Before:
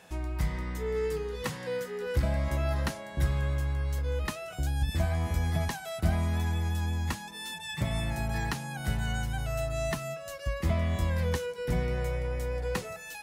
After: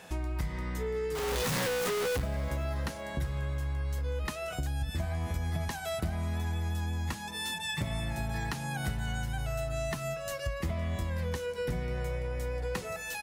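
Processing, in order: 1.15–2.2 infinite clipping; compressor 5:1, threshold -35 dBFS, peak gain reduction 13.5 dB; on a send: feedback echo 0.379 s, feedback 52%, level -20 dB; on the sum: gain +4.5 dB

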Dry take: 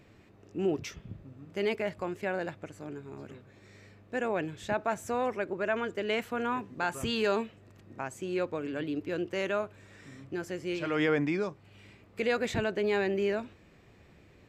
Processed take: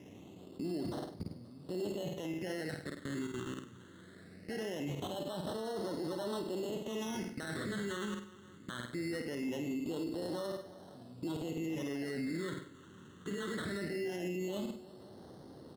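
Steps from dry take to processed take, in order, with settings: CVSD 64 kbps; sample-and-hold 17×; HPF 180 Hz 12 dB/oct; high shelf 9600 Hz -8 dB; feedback echo 0.159 s, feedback 53%, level -21 dB; level quantiser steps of 23 dB; phaser stages 8, 0.23 Hz, lowest notch 740–2600 Hz; speed mistake 48 kHz file played as 44.1 kHz; flutter echo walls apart 8.5 m, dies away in 0.37 s; limiter -46.5 dBFS, peak gain reduction 12 dB; gain +16 dB

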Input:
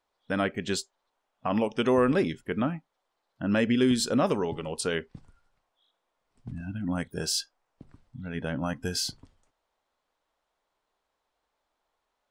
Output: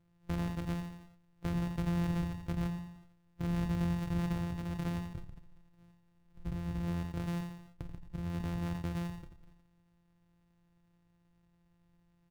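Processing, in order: sample sorter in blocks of 256 samples; tone controls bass +13 dB, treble -5 dB; compressor 2.5:1, threshold -44 dBFS, peak gain reduction 21.5 dB; feedback echo 86 ms, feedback 34%, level -11 dB; sustainer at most 72 dB/s; gain +2 dB

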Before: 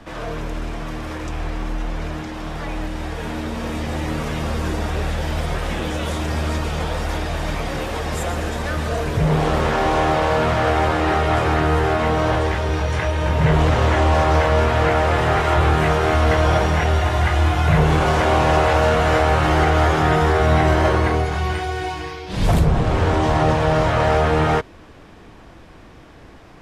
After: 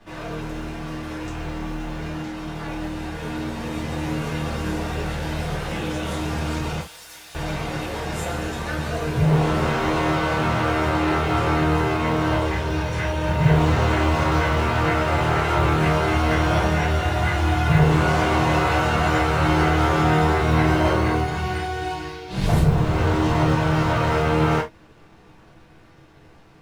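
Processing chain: G.711 law mismatch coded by A; 6.8–7.35 pre-emphasis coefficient 0.97; non-linear reverb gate 0.1 s falling, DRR -4.5 dB; gain -7.5 dB

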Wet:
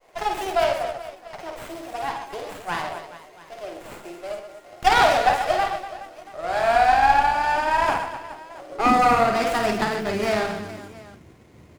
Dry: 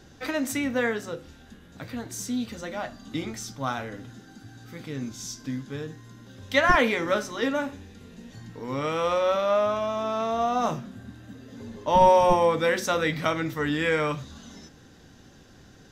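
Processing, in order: reverse bouncing-ball echo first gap 70 ms, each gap 1.5×, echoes 5; expander -47 dBFS; speed mistake 33 rpm record played at 45 rpm; high-pass sweep 660 Hz -> 75 Hz, 8.67–9.19; running maximum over 9 samples

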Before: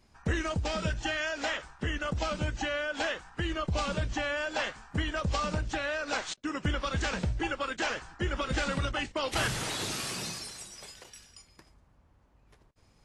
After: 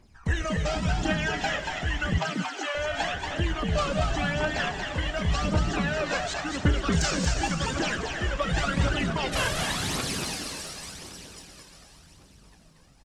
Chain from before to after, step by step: regenerating reverse delay 0.179 s, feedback 78%, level -12 dB; 6.92–7.79 band shelf 7300 Hz +10 dB; phaser 0.9 Hz, delay 2 ms, feedback 60%; 2.18–2.75 HPF 720 Hz 24 dB/oct; on a send: frequency-shifting echo 0.232 s, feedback 31%, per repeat +110 Hz, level -5 dB

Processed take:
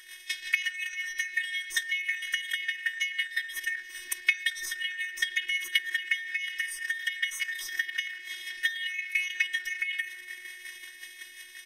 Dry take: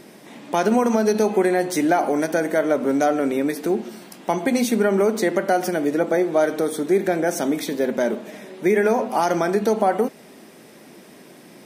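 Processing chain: four-band scrambler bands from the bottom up 4123; tilt shelf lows -5 dB, about 1500 Hz; reverb RT60 1.4 s, pre-delay 5 ms, DRR 18.5 dB; level quantiser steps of 10 dB; band-limited delay 0.127 s, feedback 85%, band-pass 410 Hz, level -6.5 dB; rotary speaker horn 5.5 Hz; compressor 4:1, threshold -38 dBFS, peak gain reduction 17 dB; transient shaper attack +12 dB, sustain +8 dB; robotiser 364 Hz; band shelf 570 Hz -12 dB 1.3 oct; comb 3.1 ms, depth 70%; gain +4 dB

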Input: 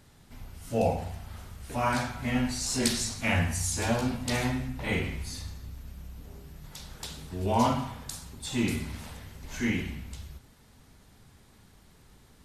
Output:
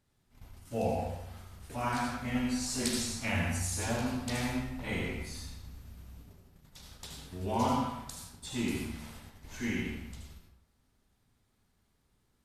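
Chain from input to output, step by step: gate -43 dBFS, range -12 dB; on a send: high shelf 7400 Hz +7.5 dB + reverb RT60 0.75 s, pre-delay 71 ms, DRR 2 dB; on the sum: gain -6.5 dB

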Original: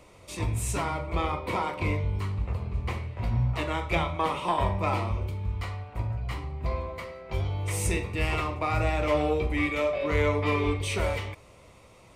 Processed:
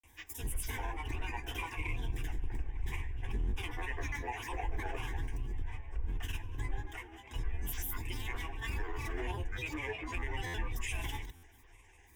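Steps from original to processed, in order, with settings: octaver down 2 oct, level +3 dB; passive tone stack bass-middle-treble 5-5-5; limiter -32.5 dBFS, peak gain reduction 9 dB; grains, pitch spread up and down by 12 st; fixed phaser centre 880 Hz, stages 8; on a send at -21.5 dB: reverb RT60 1.3 s, pre-delay 19 ms; on the sum: stuck buffer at 10.46/11.35, samples 512, times 6; gain +8.5 dB

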